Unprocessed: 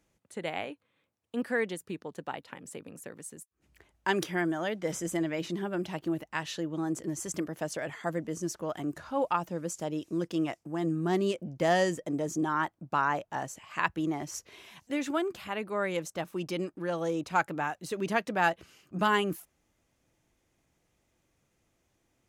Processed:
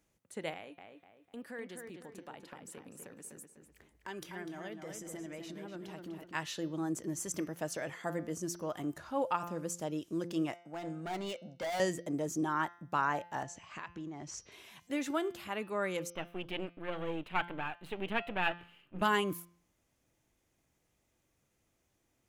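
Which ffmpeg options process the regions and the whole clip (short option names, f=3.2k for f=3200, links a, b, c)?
-filter_complex "[0:a]asettb=1/sr,asplit=3[a][b][c];[a]atrim=end=0.534[d];[b]atrim=start=0.53:end=6.34,asetpts=PTS-STARTPTS,afade=t=in:d=0.004:c=qsin,afade=t=out:st=5.806:d=0.004:c=qsin,acompressor=threshold=-46dB:ratio=2:attack=3.2:release=140:knee=1:detection=peak,asplit=2[e][f];[f]adelay=249,lowpass=f=2.9k:p=1,volume=-5dB,asplit=2[g][h];[h]adelay=249,lowpass=f=2.9k:p=1,volume=0.39,asplit=2[i][j];[j]adelay=249,lowpass=f=2.9k:p=1,volume=0.39,asplit=2[k][l];[l]adelay=249,lowpass=f=2.9k:p=1,volume=0.39,asplit=2[m][n];[n]adelay=249,lowpass=f=2.9k:p=1,volume=0.39[o];[e][g][i][k][m][o]amix=inputs=6:normalize=0,atrim=end_sample=256221[p];[c]atrim=start=6.336[q];[d][p]acrossfade=d=0.004:c1=hsin:c2=qsin[r];[r][q]acrossfade=d=0.004:c1=qsin:c2=hsin,asettb=1/sr,asplit=3[s][t][u];[s]atrim=end=10.564[v];[t]atrim=start=10.56:end=11.8,asetpts=PTS-STARTPTS,afade=t=in:d=0.004:c=qsin,afade=t=out:st=1.236:d=0.004:c=qsin,highpass=270,lowpass=6.1k,aecho=1:1:1.4:0.6,atrim=end_sample=54684,volume=31dB,asoftclip=hard,volume=-31dB[w];[u]atrim=start=11.796[x];[v][w]acrossfade=d=0.004:c1=hsin:c2=qsin[y];[y][x]acrossfade=d=0.004:c1=qsin:c2=hsin,asettb=1/sr,asplit=3[z][aa][ab];[z]atrim=end=13.434[ac];[aa]atrim=start=13.43:end=14.52,asetpts=PTS-STARTPTS,afade=t=in:d=0.004:c=qsin,afade=t=out:st=1.086:d=0.004:c=qsin,lowpass=f=7.2k:w=0.5412,lowpass=f=7.2k:w=1.3066,lowshelf=f=200:g=6,acompressor=threshold=-37dB:ratio=5:attack=3.2:release=140:knee=1:detection=peak[ad];[ab]atrim=start=14.516[ae];[ac][ad]acrossfade=d=0.004:c1=hsin:c2=qsin[af];[af][ae]acrossfade=d=0.004:c1=qsin:c2=hsin,asettb=1/sr,asplit=3[ag][ah][ai];[ag]atrim=end=16.104[aj];[ah]atrim=start=16.1:end=19.02,asetpts=PTS-STARTPTS,afade=t=in:d=0.004:c=qsin,afade=t=out:st=2.916:d=0.004:c=qsin,aeval=exprs='if(lt(val(0),0),0.251*val(0),val(0))':c=same,highshelf=f=4.1k:t=q:w=3:g=-11.5[ak];[ai]atrim=start=19.016[al];[aj][ak]acrossfade=d=0.004:c1=hsin:c2=qsin[am];[am][al]acrossfade=d=0.004:c1=qsin:c2=hsin,highshelf=f=10k:g=6.5,bandreject=f=173:t=h:w=4,bandreject=f=346:t=h:w=4,bandreject=f=519:t=h:w=4,bandreject=f=692:t=h:w=4,bandreject=f=865:t=h:w=4,bandreject=f=1.038k:t=h:w=4,bandreject=f=1.211k:t=h:w=4,bandreject=f=1.384k:t=h:w=4,bandreject=f=1.557k:t=h:w=4,bandreject=f=1.73k:t=h:w=4,bandreject=f=1.903k:t=h:w=4,bandreject=f=2.076k:t=h:w=4,bandreject=f=2.249k:t=h:w=4,bandreject=f=2.422k:t=h:w=4,bandreject=f=2.595k:t=h:w=4,bandreject=f=2.768k:t=h:w=4,bandreject=f=2.941k:t=h:w=4,bandreject=f=3.114k:t=h:w=4,bandreject=f=3.287k:t=h:w=4,bandreject=f=3.46k:t=h:w=4,bandreject=f=3.633k:t=h:w=4,bandreject=f=3.806k:t=h:w=4,bandreject=f=3.979k:t=h:w=4,bandreject=f=4.152k:t=h:w=4,bandreject=f=4.325k:t=h:w=4,bandreject=f=4.498k:t=h:w=4,bandreject=f=4.671k:t=h:w=4,bandreject=f=4.844k:t=h:w=4,bandreject=f=5.017k:t=h:w=4,bandreject=f=5.19k:t=h:w=4,bandreject=f=5.363k:t=h:w=4,bandreject=f=5.536k:t=h:w=4,bandreject=f=5.709k:t=h:w=4,bandreject=f=5.882k:t=h:w=4,bandreject=f=6.055k:t=h:w=4,bandreject=f=6.228k:t=h:w=4,volume=-3.5dB"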